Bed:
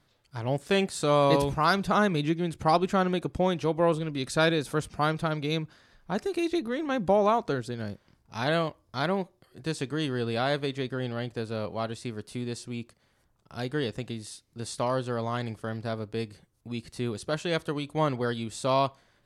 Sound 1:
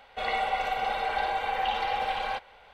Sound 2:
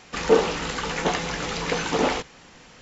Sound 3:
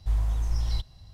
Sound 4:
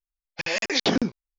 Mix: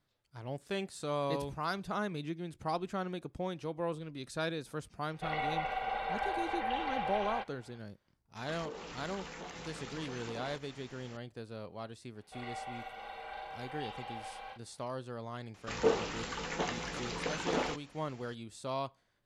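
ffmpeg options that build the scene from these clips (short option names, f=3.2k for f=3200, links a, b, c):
-filter_complex "[1:a]asplit=2[a][b];[2:a]asplit=2[c][d];[0:a]volume=-12dB[e];[a]bass=f=250:g=1,treble=f=4k:g=-10[f];[c]acompressor=threshold=-35dB:ratio=5:attack=0.16:release=83:knee=1:detection=rms[g];[b]asplit=2[h][i];[i]adelay=39,volume=-3dB[j];[h][j]amix=inputs=2:normalize=0[k];[f]atrim=end=2.73,asetpts=PTS-STARTPTS,volume=-6.5dB,afade=t=in:d=0.004:c=hsin,afade=t=out:st=2.726:d=0.004:c=hsin,adelay=222705S[l];[g]atrim=end=2.81,asetpts=PTS-STARTPTS,volume=-6dB,afade=t=in:d=0.004:c=hsin,afade=t=out:st=2.806:d=0.004:c=hsin,adelay=8360[m];[k]atrim=end=2.73,asetpts=PTS-STARTPTS,volume=-17.5dB,afade=t=in:d=0.004:c=hsin,afade=t=out:st=2.726:d=0.004:c=hsin,adelay=12150[n];[d]atrim=end=2.81,asetpts=PTS-STARTPTS,volume=-11dB,afade=t=in:d=0.004:c=hsin,afade=t=out:st=2.806:d=0.004:c=hsin,adelay=15540[o];[e][l][m][n][o]amix=inputs=5:normalize=0"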